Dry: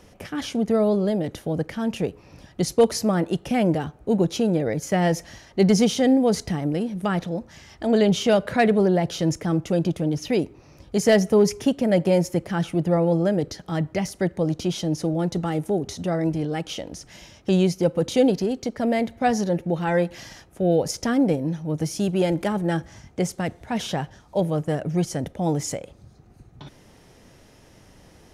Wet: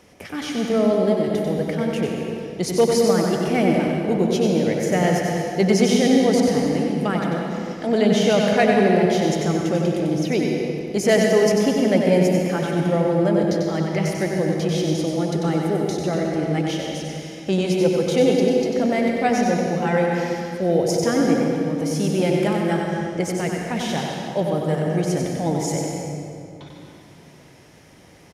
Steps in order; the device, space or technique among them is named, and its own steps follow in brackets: PA in a hall (HPF 140 Hz 6 dB/oct; bell 2200 Hz +5 dB 0.26 oct; echo 94 ms -5 dB; reverb RT60 2.6 s, pre-delay 0.116 s, DRR 1.5 dB)

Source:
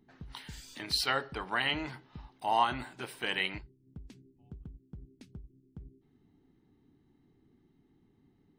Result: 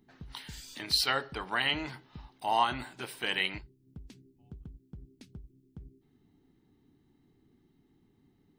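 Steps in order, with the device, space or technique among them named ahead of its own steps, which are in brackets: presence and air boost (bell 4200 Hz +3 dB 1.5 oct; high shelf 11000 Hz +6.5 dB)

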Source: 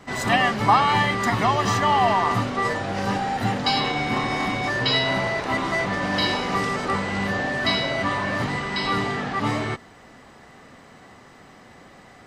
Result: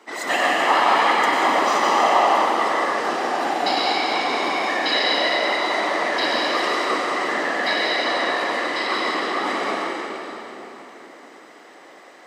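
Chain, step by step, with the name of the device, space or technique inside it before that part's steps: whispering ghost (whisperiser; HPF 310 Hz 24 dB/oct; reverb RT60 3.7 s, pre-delay 90 ms, DRR -3.5 dB); gain -2 dB

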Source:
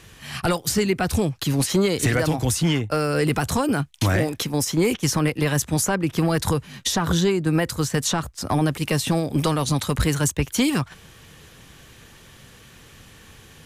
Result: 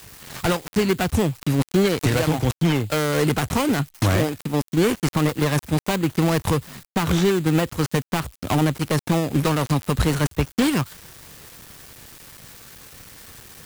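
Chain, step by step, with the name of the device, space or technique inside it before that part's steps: budget class-D amplifier (switching dead time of 0.26 ms; switching spikes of -28 dBFS); gain +1.5 dB

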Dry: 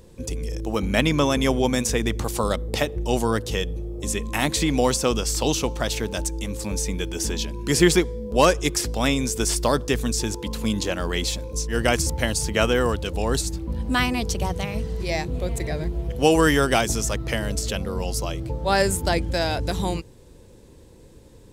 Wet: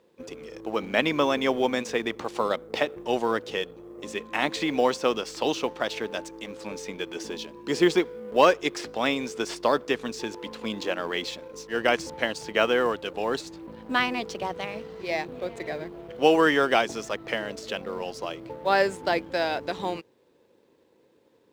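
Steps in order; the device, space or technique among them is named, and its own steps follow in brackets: phone line with mismatched companding (BPF 320–3400 Hz; G.711 law mismatch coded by A); 7.23–8 bell 1900 Hz -5 dB 1.3 oct

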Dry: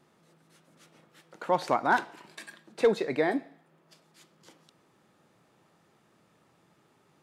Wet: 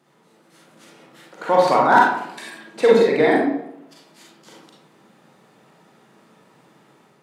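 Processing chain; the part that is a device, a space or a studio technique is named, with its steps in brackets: far laptop microphone (reverb RT60 0.75 s, pre-delay 35 ms, DRR -4 dB; HPF 160 Hz 12 dB/oct; AGC gain up to 4.5 dB); gain +2 dB

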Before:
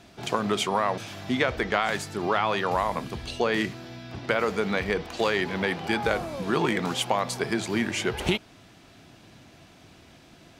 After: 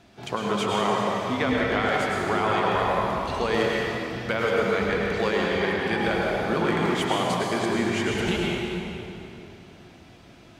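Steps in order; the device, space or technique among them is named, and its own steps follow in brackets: 3.34–4.51 high shelf 4000 Hz +6 dB; swimming-pool hall (reverb RT60 3.0 s, pre-delay 95 ms, DRR -3.5 dB; high shelf 4600 Hz -5.5 dB); gain -2.5 dB

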